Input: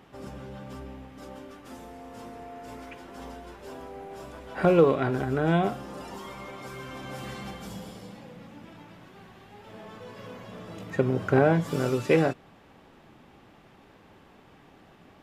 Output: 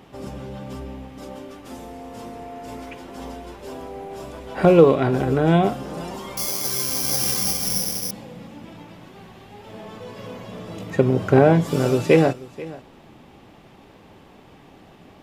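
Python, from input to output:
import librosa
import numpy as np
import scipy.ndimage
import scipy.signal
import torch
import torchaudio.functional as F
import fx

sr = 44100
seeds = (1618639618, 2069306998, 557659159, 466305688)

y = fx.peak_eq(x, sr, hz=1500.0, db=-5.0, octaves=0.87)
y = y + 10.0 ** (-19.0 / 20.0) * np.pad(y, (int(485 * sr / 1000.0), 0))[:len(y)]
y = fx.resample_bad(y, sr, factor=8, down='none', up='zero_stuff', at=(6.37, 8.11))
y = y * 10.0 ** (7.0 / 20.0)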